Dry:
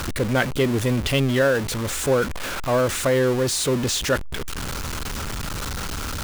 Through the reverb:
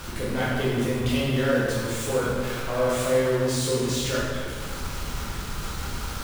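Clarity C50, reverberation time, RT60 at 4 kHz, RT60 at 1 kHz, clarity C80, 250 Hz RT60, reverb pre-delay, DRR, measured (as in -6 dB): -2.5 dB, 1.8 s, 1.3 s, 1.7 s, 0.5 dB, 2.0 s, 7 ms, -8.0 dB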